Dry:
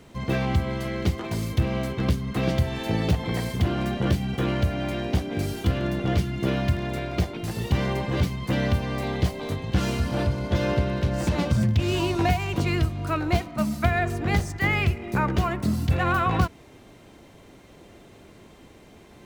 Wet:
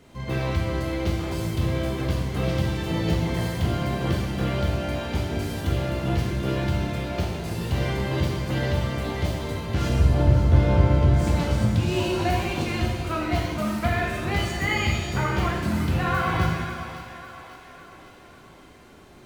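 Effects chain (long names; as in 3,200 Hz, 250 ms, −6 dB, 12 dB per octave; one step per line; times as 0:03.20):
0:09.89–0:11.14: spectral tilt −2.5 dB per octave
echo with a time of its own for lows and highs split 490 Hz, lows 197 ms, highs 550 ms, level −11.5 dB
reverb with rising layers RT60 1.1 s, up +7 semitones, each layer −8 dB, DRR −1.5 dB
level −4.5 dB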